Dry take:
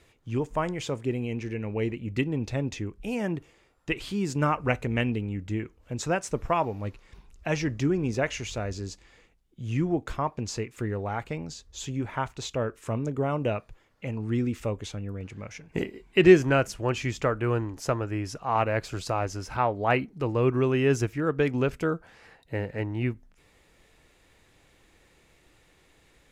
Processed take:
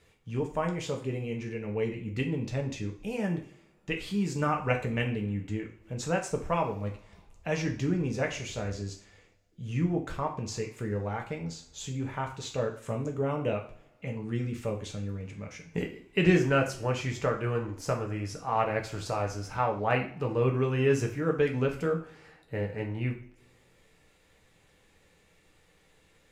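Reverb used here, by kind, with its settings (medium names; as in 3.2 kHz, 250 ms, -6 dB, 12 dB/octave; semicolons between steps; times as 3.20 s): two-slope reverb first 0.42 s, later 2 s, from -26 dB, DRR 1.5 dB; trim -5 dB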